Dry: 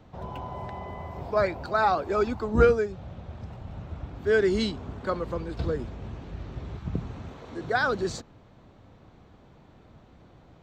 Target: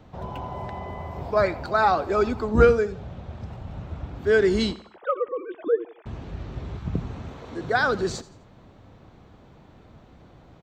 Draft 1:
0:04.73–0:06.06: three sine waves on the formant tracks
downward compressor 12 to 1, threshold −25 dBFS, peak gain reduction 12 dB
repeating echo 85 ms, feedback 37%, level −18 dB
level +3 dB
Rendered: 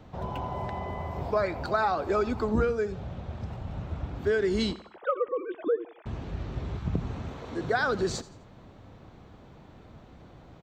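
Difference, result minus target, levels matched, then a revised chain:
downward compressor: peak gain reduction +12 dB
0:04.73–0:06.06: three sine waves on the formant tracks
repeating echo 85 ms, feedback 37%, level −18 dB
level +3 dB

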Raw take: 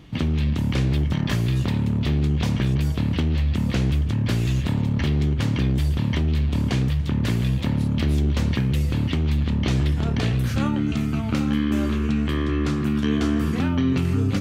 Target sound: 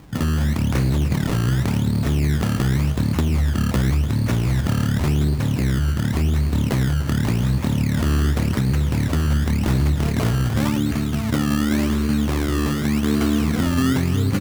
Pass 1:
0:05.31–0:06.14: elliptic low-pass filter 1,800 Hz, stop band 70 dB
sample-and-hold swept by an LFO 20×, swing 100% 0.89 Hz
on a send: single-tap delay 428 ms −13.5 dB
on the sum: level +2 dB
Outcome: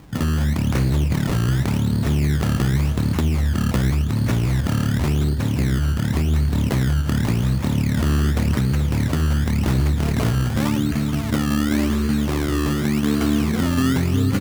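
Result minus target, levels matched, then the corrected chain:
echo 132 ms late
0:05.31–0:06.14: elliptic low-pass filter 1,800 Hz, stop band 70 dB
sample-and-hold swept by an LFO 20×, swing 100% 0.89 Hz
on a send: single-tap delay 296 ms −13.5 dB
on the sum: level +2 dB

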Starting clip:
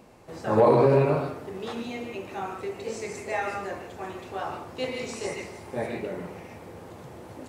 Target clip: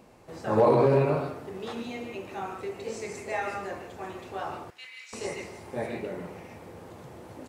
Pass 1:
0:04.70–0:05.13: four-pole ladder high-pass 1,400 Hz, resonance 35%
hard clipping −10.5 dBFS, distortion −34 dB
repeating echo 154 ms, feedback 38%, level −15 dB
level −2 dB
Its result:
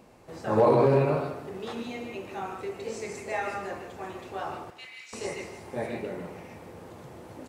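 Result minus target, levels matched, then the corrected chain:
echo-to-direct +10.5 dB
0:04.70–0:05.13: four-pole ladder high-pass 1,400 Hz, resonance 35%
hard clipping −10.5 dBFS, distortion −34 dB
repeating echo 154 ms, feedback 38%, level −25.5 dB
level −2 dB

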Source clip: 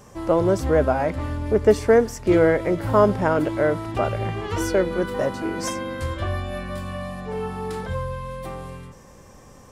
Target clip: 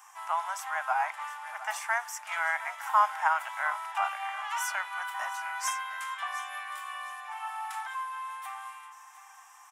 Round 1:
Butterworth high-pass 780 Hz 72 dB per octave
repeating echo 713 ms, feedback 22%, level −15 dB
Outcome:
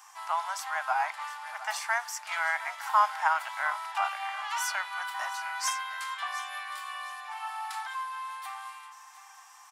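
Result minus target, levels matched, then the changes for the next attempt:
4,000 Hz band +3.5 dB
add after Butterworth high-pass: parametric band 4,400 Hz −11 dB 0.54 octaves

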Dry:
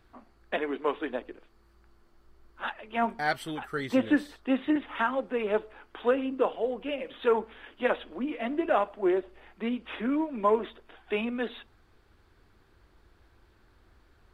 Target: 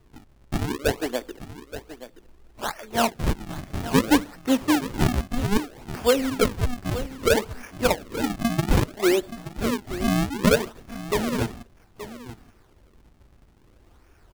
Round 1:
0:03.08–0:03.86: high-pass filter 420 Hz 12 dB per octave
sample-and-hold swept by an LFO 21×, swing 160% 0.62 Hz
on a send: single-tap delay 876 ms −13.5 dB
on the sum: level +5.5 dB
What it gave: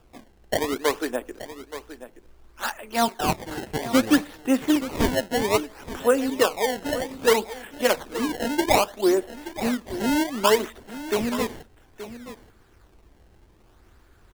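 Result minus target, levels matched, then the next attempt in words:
sample-and-hold swept by an LFO: distortion −10 dB
0:03.08–0:03.86: high-pass filter 420 Hz 12 dB per octave
sample-and-hold swept by an LFO 53×, swing 160% 0.62 Hz
on a send: single-tap delay 876 ms −13.5 dB
on the sum: level +5.5 dB

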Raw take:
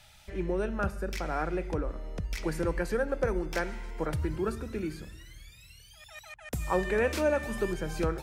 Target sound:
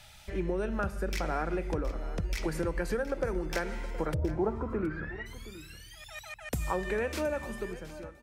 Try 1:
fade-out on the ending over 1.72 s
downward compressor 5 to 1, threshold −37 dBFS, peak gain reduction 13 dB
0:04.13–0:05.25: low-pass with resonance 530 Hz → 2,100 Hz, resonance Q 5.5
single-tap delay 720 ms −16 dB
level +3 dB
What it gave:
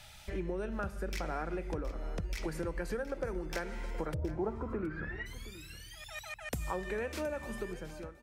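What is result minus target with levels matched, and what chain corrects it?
downward compressor: peak gain reduction +5 dB
fade-out on the ending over 1.72 s
downward compressor 5 to 1, threshold −30.5 dBFS, peak gain reduction 7.5 dB
0:04.13–0:05.25: low-pass with resonance 530 Hz → 2,100 Hz, resonance Q 5.5
single-tap delay 720 ms −16 dB
level +3 dB

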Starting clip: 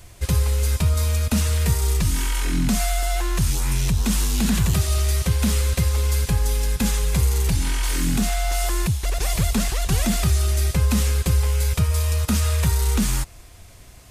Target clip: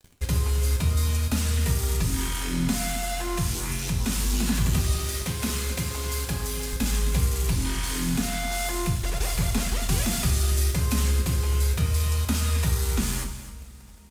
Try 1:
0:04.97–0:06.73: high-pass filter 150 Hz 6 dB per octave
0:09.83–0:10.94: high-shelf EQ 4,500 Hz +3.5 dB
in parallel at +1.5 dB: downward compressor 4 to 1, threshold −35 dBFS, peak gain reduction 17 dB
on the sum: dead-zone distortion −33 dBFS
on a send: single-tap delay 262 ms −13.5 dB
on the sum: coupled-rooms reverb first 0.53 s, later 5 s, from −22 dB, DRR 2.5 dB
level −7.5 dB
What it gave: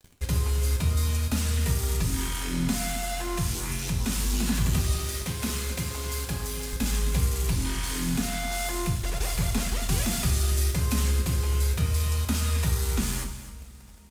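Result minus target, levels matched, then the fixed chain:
downward compressor: peak gain reduction +5.5 dB
0:04.97–0:06.73: high-pass filter 150 Hz 6 dB per octave
0:09.83–0:10.94: high-shelf EQ 4,500 Hz +3.5 dB
in parallel at +1.5 dB: downward compressor 4 to 1, threshold −27.5 dBFS, peak gain reduction 11 dB
on the sum: dead-zone distortion −33 dBFS
on a send: single-tap delay 262 ms −13.5 dB
on the sum: coupled-rooms reverb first 0.53 s, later 5 s, from −22 dB, DRR 2.5 dB
level −7.5 dB

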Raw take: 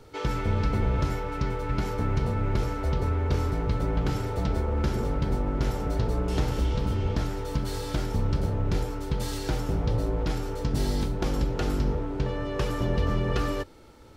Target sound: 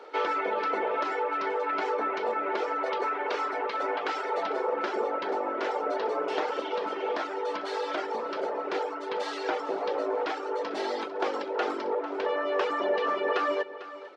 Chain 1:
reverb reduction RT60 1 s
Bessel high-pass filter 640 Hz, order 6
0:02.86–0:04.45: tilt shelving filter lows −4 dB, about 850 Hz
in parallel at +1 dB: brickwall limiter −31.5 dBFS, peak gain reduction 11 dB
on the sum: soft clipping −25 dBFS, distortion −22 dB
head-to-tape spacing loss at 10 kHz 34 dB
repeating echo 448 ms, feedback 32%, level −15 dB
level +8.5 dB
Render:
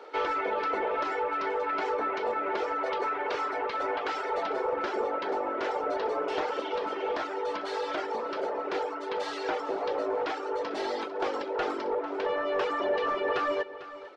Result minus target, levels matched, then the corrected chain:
soft clipping: distortion +19 dB
reverb reduction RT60 1 s
Bessel high-pass filter 640 Hz, order 6
0:02.86–0:04.45: tilt shelving filter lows −4 dB, about 850 Hz
in parallel at +1 dB: brickwall limiter −31.5 dBFS, peak gain reduction 11 dB
on the sum: soft clipping −14 dBFS, distortion −40 dB
head-to-tape spacing loss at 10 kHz 34 dB
repeating echo 448 ms, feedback 32%, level −15 dB
level +8.5 dB

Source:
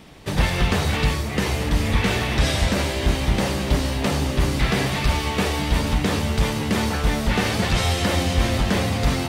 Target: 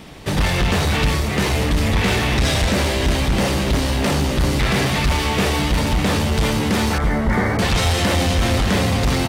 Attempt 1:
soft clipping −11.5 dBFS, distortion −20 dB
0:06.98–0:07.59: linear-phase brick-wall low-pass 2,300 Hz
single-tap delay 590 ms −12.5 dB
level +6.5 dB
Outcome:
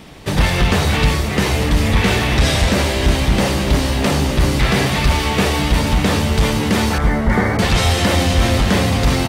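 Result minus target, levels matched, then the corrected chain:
soft clipping: distortion −9 dB
soft clipping −19.5 dBFS, distortion −11 dB
0:06.98–0:07.59: linear-phase brick-wall low-pass 2,300 Hz
single-tap delay 590 ms −12.5 dB
level +6.5 dB

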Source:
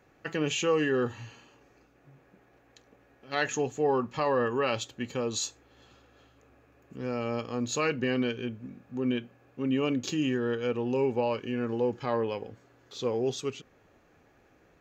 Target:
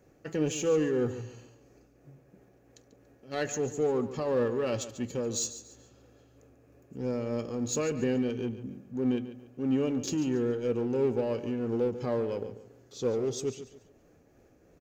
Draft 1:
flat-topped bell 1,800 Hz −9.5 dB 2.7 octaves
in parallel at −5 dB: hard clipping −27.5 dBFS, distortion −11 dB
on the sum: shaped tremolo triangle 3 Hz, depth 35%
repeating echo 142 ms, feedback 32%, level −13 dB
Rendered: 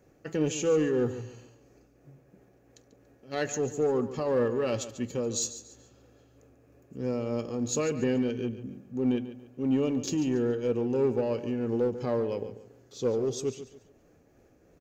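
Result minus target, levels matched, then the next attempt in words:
hard clipping: distortion −6 dB
flat-topped bell 1,800 Hz −9.5 dB 2.7 octaves
in parallel at −5 dB: hard clipping −35 dBFS, distortion −5 dB
on the sum: shaped tremolo triangle 3 Hz, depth 35%
repeating echo 142 ms, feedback 32%, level −13 dB

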